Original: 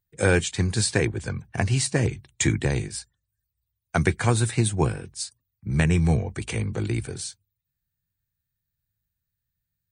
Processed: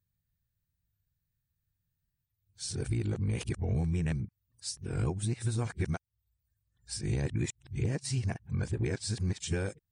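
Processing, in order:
played backwards from end to start
dynamic equaliser 5,400 Hz, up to +6 dB, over −50 dBFS, Q 4.7
downward compressor 10 to 1, threshold −29 dBFS, peak gain reduction 15 dB
low-shelf EQ 420 Hz +7 dB
wow of a warped record 45 rpm, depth 100 cents
level −4.5 dB

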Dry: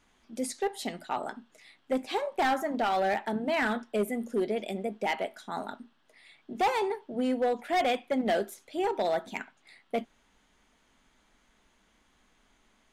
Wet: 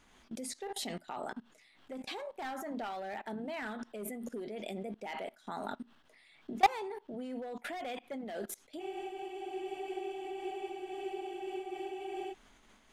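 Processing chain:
output level in coarse steps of 23 dB
frozen spectrum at 0:08.82, 3.50 s
amplitude modulation by smooth noise, depth 50%
level +8.5 dB

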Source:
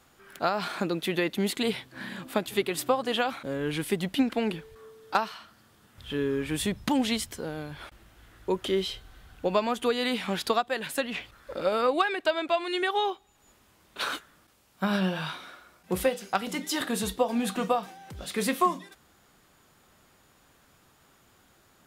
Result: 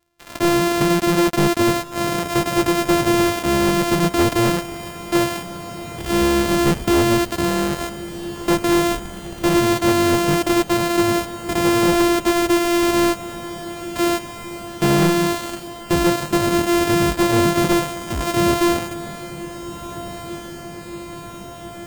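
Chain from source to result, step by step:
samples sorted by size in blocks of 128 samples
leveller curve on the samples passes 5
feedback delay with all-pass diffusion 1,571 ms, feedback 71%, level −14 dB

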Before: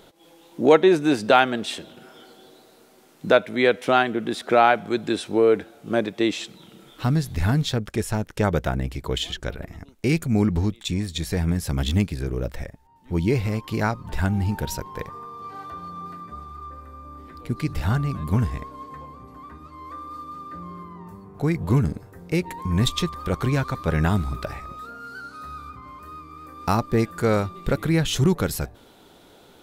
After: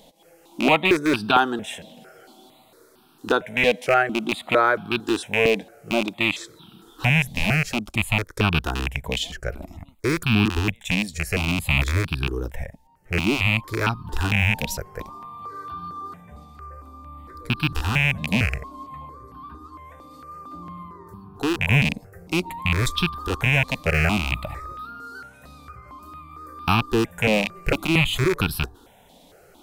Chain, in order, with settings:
loose part that buzzes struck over −26 dBFS, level −9 dBFS
step-sequenced phaser 4.4 Hz 370–2,000 Hz
level +2.5 dB

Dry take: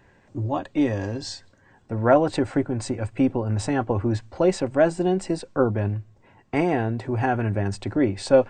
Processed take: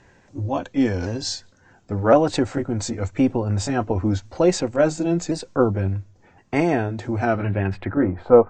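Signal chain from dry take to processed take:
pitch shifter swept by a sawtooth −2 semitones, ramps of 1,063 ms
low-pass filter sweep 6,600 Hz → 1,100 Hz, 0:07.18–0:08.12
level +2.5 dB

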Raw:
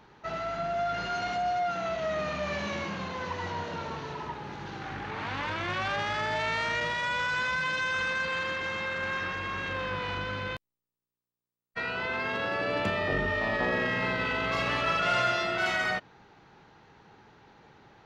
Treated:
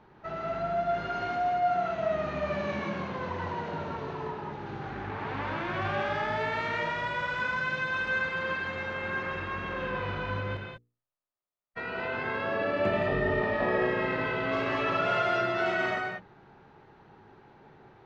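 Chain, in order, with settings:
low-pass filter 1,300 Hz 6 dB per octave
parametric band 370 Hz +4 dB 0.23 octaves
mains-hum notches 60/120/180/240/300/360/420/480 Hz
reverb whose tail is shaped and stops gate 220 ms rising, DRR 1 dB

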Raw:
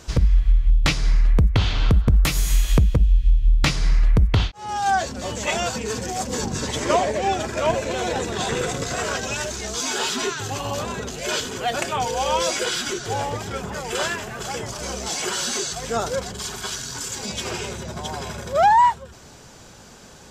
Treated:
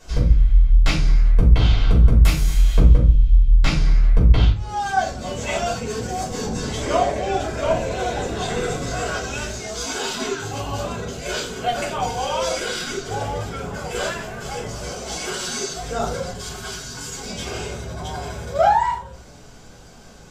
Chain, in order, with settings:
0:02.33–0:04.49: high-shelf EQ 8,100 Hz −5.5 dB
rectangular room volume 250 cubic metres, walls furnished, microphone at 5.2 metres
level −10.5 dB

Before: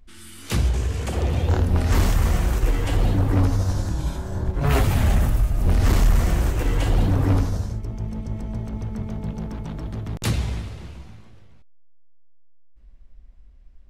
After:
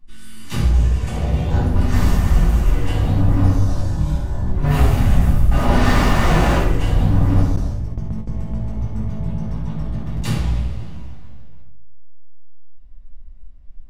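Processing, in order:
0:05.51–0:06.58: mid-hump overdrive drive 32 dB, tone 2,000 Hz, clips at −10.5 dBFS
rectangular room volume 1,000 cubic metres, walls furnished, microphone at 9.8 metres
0:07.56–0:08.71: noise gate with hold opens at −5 dBFS
level −10.5 dB

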